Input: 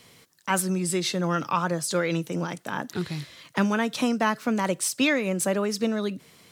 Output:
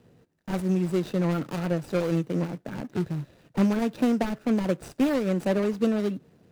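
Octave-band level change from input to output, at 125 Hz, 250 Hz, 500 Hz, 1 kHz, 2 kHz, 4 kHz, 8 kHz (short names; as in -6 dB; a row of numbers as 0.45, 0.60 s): +2.5, +2.0, 0.0, -8.0, -9.5, -10.5, -17.0 dB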